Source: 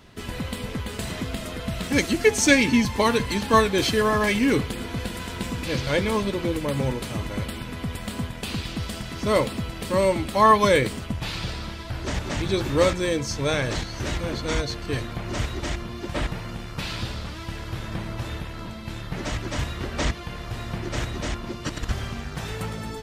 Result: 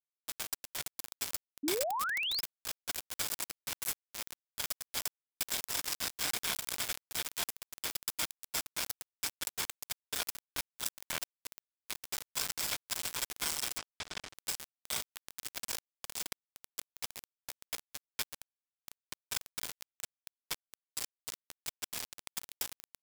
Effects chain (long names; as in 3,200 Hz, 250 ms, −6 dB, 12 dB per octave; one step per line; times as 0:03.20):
gate on every frequency bin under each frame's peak −30 dB weak
EQ curve with evenly spaced ripples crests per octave 1.7, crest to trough 13 dB
compressor whose output falls as the input rises −43 dBFS, ratio −0.5
0:20.70–0:21.35: phaser with its sweep stopped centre 460 Hz, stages 8
bit-depth reduction 6 bits, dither none
0:01.63–0:02.41: sound drawn into the spectrogram rise 270–5,300 Hz −42 dBFS
0:13.78–0:14.38: high-frequency loss of the air 99 metres
level +8 dB